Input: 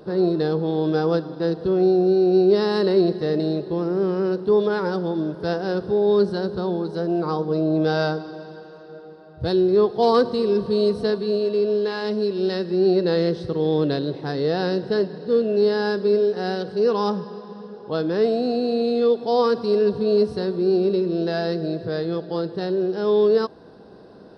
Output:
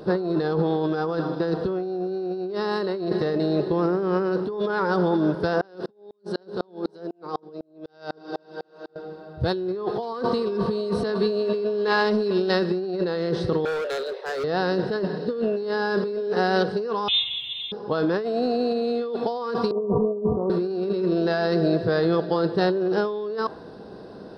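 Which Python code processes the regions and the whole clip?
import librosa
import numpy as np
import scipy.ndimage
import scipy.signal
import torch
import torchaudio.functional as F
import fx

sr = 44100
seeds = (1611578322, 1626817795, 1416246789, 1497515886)

y = fx.chain(x, sr, fx.over_compress(threshold_db=-27.0, ratio=-0.5),
    fx.highpass(hz=240.0, slope=12),
    fx.tremolo_decay(direction='swelling', hz=4.0, depth_db=39), at=(5.61, 8.96))
y = fx.chain(y, sr, fx.cheby_ripple_highpass(hz=390.0, ripple_db=6),
    fx.clip_hard(threshold_db=-31.0), at=(13.65, 14.44))
y = fx.chain(y, sr, fx.freq_invert(carrier_hz=3800),
    fx.quant_dither(seeds[0], bits=12, dither='none'), at=(17.08, 17.72))
y = fx.chain(y, sr, fx.over_compress(threshold_db=-24.0, ratio=-0.5),
    fx.steep_lowpass(hz=1200.0, slope=96), at=(19.71, 20.5))
y = fx.dynamic_eq(y, sr, hz=1200.0, q=0.84, threshold_db=-38.0, ratio=4.0, max_db=8)
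y = fx.over_compress(y, sr, threshold_db=-24.0, ratio=-1.0)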